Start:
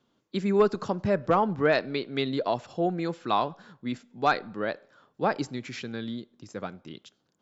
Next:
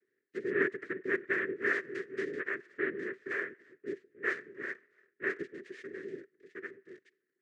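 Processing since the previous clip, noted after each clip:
cochlear-implant simulation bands 3
pair of resonant band-passes 840 Hz, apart 2.2 octaves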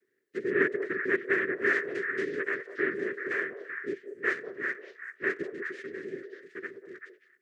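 echo through a band-pass that steps 192 ms, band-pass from 590 Hz, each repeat 1.4 octaves, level −3 dB
level +4 dB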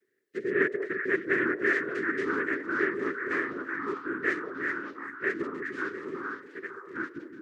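delay with pitch and tempo change per echo 734 ms, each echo −3 semitones, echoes 2, each echo −6 dB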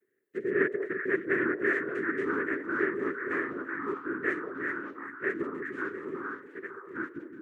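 parametric band 4,800 Hz −14 dB 1.3 octaves

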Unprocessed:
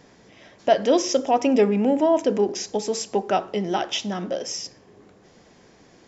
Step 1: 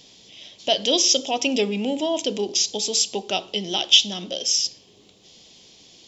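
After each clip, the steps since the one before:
high shelf with overshoot 2,300 Hz +12.5 dB, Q 3
level −4.5 dB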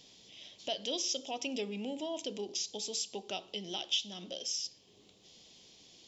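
downward compressor 1.5 to 1, threshold −37 dBFS, peak gain reduction 10 dB
level −8.5 dB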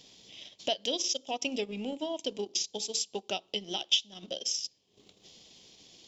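transient designer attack +5 dB, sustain −12 dB
level +2.5 dB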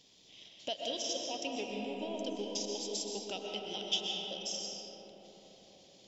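comb and all-pass reverb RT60 4.8 s, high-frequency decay 0.35×, pre-delay 85 ms, DRR −1.5 dB
level −7.5 dB

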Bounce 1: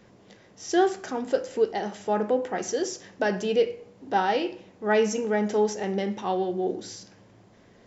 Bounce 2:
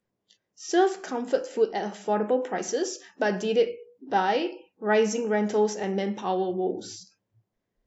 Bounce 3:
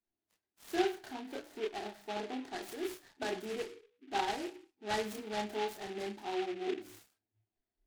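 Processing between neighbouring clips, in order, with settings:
noise reduction from a noise print of the clip's start 27 dB
phaser with its sweep stopped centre 770 Hz, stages 8; multi-voice chorus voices 6, 0.55 Hz, delay 29 ms, depth 1.8 ms; short delay modulated by noise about 2,200 Hz, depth 0.084 ms; level −6 dB

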